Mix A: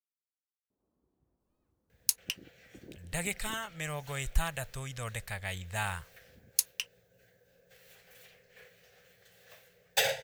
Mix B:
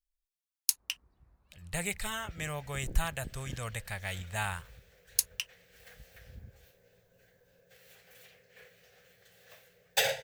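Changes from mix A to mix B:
speech: entry -1.40 s; first sound: remove band-pass filter 330 Hz, Q 1.3

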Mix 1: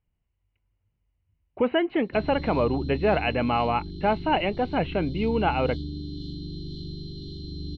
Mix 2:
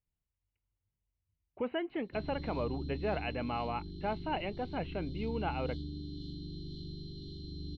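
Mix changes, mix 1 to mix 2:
speech -12.0 dB; background -7.5 dB

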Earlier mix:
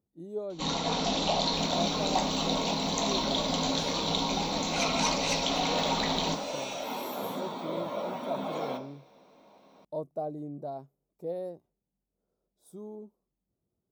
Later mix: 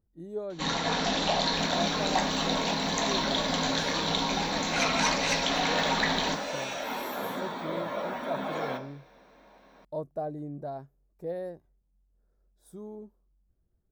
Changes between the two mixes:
speech: remove high-pass 150 Hz 12 dB/octave; master: add peaking EQ 1.7 kHz +15 dB 0.49 oct

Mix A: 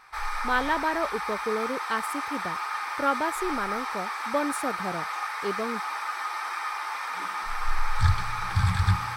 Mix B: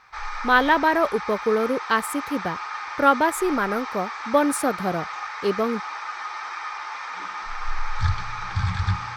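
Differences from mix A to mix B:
speech +8.0 dB; background: add Chebyshev low-pass 6.8 kHz, order 4

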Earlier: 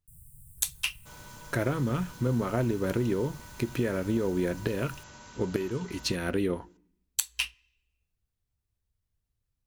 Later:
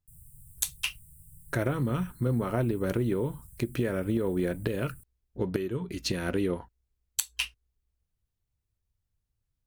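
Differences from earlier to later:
second sound: muted; reverb: off

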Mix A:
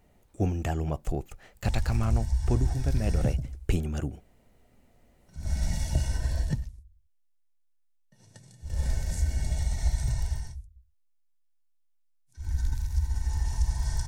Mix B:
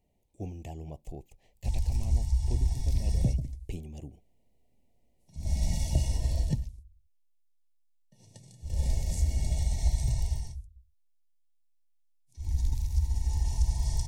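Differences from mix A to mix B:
speech -11.5 dB; master: add Butterworth band-stop 1.4 kHz, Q 1.1

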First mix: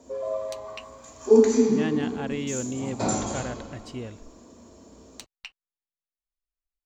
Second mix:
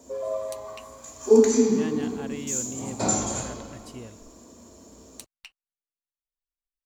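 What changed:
speech -6.0 dB; master: remove boxcar filter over 4 samples

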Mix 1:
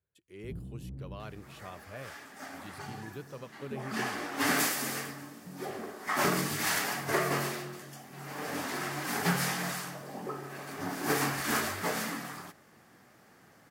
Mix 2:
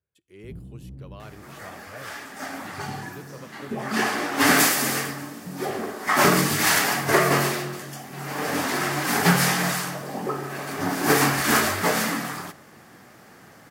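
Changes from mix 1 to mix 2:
second sound +8.0 dB; reverb: on, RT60 0.75 s

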